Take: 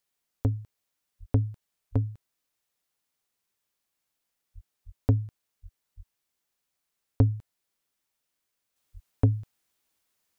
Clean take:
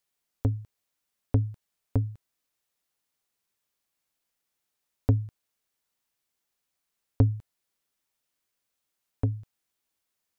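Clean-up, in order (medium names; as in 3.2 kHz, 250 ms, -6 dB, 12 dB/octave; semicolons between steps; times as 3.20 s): de-plosive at 1.19/1.91/4.54/4.85/5.62/5.96/8.93 s; gain correction -5 dB, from 8.76 s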